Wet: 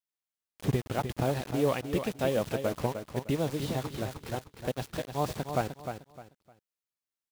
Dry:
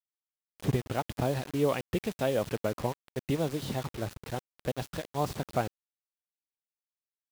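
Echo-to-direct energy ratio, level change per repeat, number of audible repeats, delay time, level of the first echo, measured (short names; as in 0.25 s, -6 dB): -7.5 dB, -11.5 dB, 3, 0.305 s, -8.0 dB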